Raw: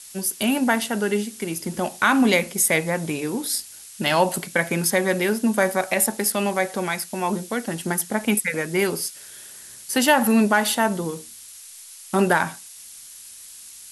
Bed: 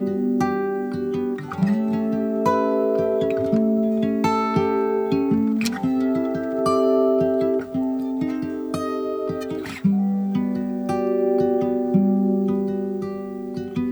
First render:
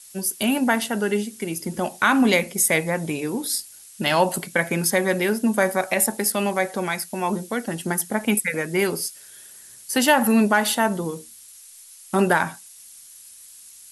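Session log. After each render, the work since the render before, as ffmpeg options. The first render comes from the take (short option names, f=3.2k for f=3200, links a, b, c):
-af "afftdn=nr=6:nf=-43"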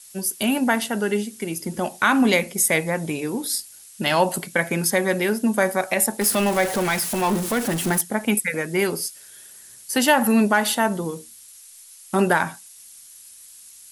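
-filter_complex "[0:a]asettb=1/sr,asplit=3[a][b][c];[a]atrim=end=6.214[d];[b]atrim=start=6.21:end=8.01,asetpts=PTS-STARTPTS,afade=t=in:d=0.004:c=qsin,afade=t=out:st=1.796:d=0.004:c=qsin,aeval=exprs='val(0)+0.5*0.0668*sgn(val(0))':c=same[e];[c]atrim=start=8.006[f];[d][e]acrossfade=d=0.004:c1=hsin:c2=qsin[g];[g][f]acrossfade=d=0.004:c1=qsin:c2=hsin"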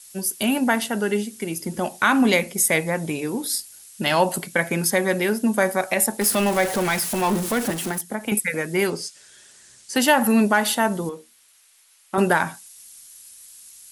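-filter_complex "[0:a]asettb=1/sr,asplit=3[a][b][c];[a]atrim=end=7.704[d];[b]atrim=start=7.7:end=8.32,asetpts=PTS-STARTPTS,afade=t=in:d=0.004:c=qsin,afade=t=out:st=0.616:d=0.004:c=qsin,acrossover=split=160|320[e][f][g];[e]acompressor=threshold=-42dB:ratio=4[h];[f]acompressor=threshold=-33dB:ratio=4[i];[g]acompressor=threshold=-26dB:ratio=4[j];[h][i][j]amix=inputs=3:normalize=0[k];[c]atrim=start=8.316[l];[d][k]acrossfade=d=0.004:c1=hsin:c2=qsin[m];[m][l]acrossfade=d=0.004:c1=qsin:c2=hsin,asettb=1/sr,asplit=3[n][o][p];[n]atrim=end=8.904[q];[o]atrim=start=8.9:end=9.96,asetpts=PTS-STARTPTS,afade=t=in:d=0.004:c=qsin,afade=t=out:st=1.056:d=0.004:c=qsin,lowpass=f=8.1k:w=0.5412,lowpass=f=8.1k:w=1.3066[r];[p]atrim=start=9.956[s];[q][r]acrossfade=d=0.004:c1=hsin:c2=qsin[t];[t][s]acrossfade=d=0.004:c1=qsin:c2=hsin,asettb=1/sr,asplit=3[u][v][w];[u]atrim=end=11.094[x];[v]atrim=start=11.09:end=12.18,asetpts=PTS-STARTPTS,afade=t=in:d=0.004:c=qsin,afade=t=out:st=1.086:d=0.004:c=qsin,bass=f=250:g=-13,treble=f=4k:g=-12[y];[w]atrim=start=12.176[z];[x][y]acrossfade=d=0.004:c1=hsin:c2=qsin[aa];[aa][z]acrossfade=d=0.004:c1=qsin:c2=hsin"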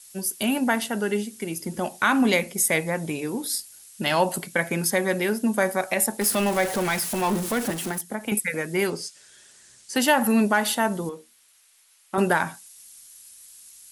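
-af "volume=-2.5dB"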